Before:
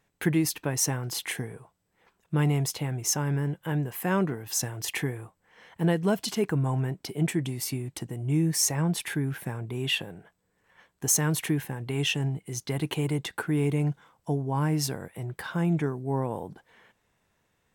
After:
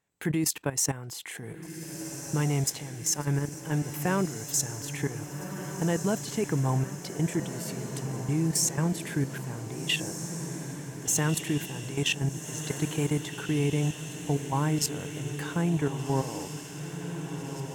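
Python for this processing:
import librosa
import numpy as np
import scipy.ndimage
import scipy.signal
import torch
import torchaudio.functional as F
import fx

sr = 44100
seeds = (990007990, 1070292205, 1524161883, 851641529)

p1 = fx.highpass(x, sr, hz=67.0, slope=6)
p2 = fx.peak_eq(p1, sr, hz=7400.0, db=7.5, octaves=0.33)
p3 = fx.level_steps(p2, sr, step_db=14)
p4 = p3 + fx.echo_diffused(p3, sr, ms=1578, feedback_pct=66, wet_db=-9.0, dry=0)
y = p4 * librosa.db_to_amplitude(2.5)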